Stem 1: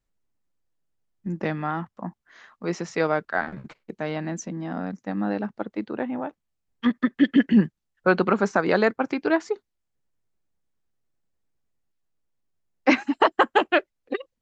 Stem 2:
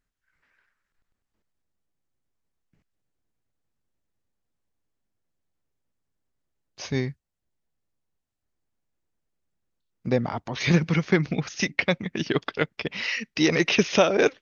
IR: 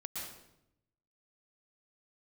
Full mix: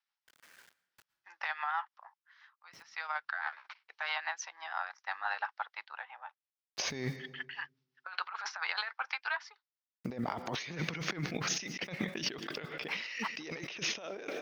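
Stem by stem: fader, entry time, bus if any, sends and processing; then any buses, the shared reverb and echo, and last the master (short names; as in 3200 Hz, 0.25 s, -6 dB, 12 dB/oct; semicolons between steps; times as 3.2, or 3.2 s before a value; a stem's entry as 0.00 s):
+0.5 dB, 0.00 s, no send, Chebyshev band-pass 840–5500 Hz, order 4; rotary speaker horn 6 Hz; auto duck -19 dB, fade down 1.20 s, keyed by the second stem
+2.0 dB, 0.00 s, send -18 dB, bit-crush 11-bit; compressor 2.5:1, threshold -26 dBFS, peak gain reduction 9 dB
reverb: on, RT60 0.80 s, pre-delay 0.106 s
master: HPF 360 Hz 6 dB/oct; negative-ratio compressor -38 dBFS, ratio -1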